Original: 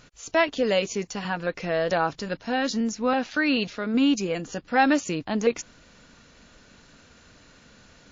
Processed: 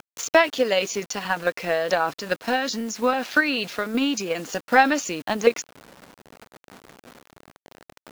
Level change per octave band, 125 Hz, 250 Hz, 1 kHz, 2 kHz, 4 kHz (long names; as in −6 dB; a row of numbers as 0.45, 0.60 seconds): −4.5, −2.5, +3.5, +5.0, +3.5 decibels